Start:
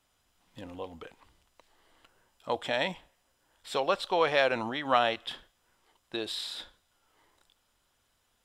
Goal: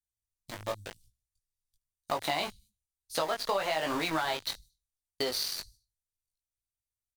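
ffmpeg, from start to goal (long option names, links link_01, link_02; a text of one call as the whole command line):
ffmpeg -i in.wav -filter_complex "[0:a]asetrate=52038,aresample=44100,agate=range=-24dB:threshold=-57dB:ratio=16:detection=peak,aecho=1:1:76|152|228:0.0794|0.0397|0.0199,asplit=2[link_01][link_02];[link_02]asoftclip=type=tanh:threshold=-23.5dB,volume=-3dB[link_03];[link_01][link_03]amix=inputs=2:normalize=0,alimiter=limit=-15dB:level=0:latency=1:release=187,acrossover=split=130|5600[link_04][link_05][link_06];[link_05]aeval=exprs='val(0)*gte(abs(val(0)),0.0224)':channel_layout=same[link_07];[link_04][link_07][link_06]amix=inputs=3:normalize=0,flanger=delay=18:depth=2.6:speed=1,acompressor=threshold=-32dB:ratio=5,volume=5dB" out.wav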